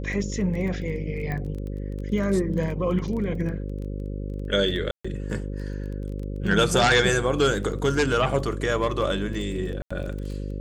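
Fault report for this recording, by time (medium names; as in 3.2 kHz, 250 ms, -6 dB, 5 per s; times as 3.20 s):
buzz 50 Hz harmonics 11 -31 dBFS
crackle 14 per s -32 dBFS
1.32 s: pop -19 dBFS
4.91–5.04 s: dropout 135 ms
9.82–9.90 s: dropout 85 ms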